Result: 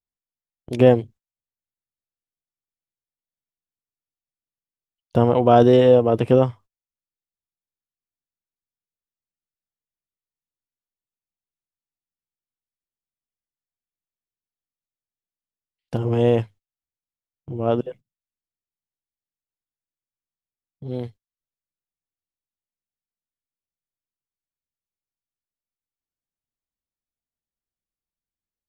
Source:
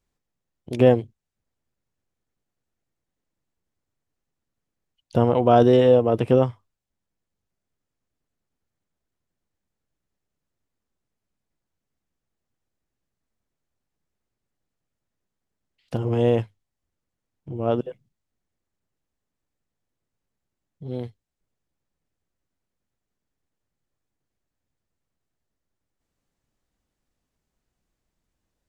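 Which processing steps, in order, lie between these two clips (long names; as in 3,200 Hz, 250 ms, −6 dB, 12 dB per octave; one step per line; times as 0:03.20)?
noise gate −43 dBFS, range −22 dB
level +2 dB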